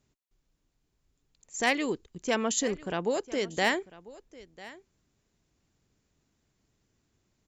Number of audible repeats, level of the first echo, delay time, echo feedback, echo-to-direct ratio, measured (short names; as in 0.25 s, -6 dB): 1, -19.5 dB, 0.997 s, no steady repeat, -19.5 dB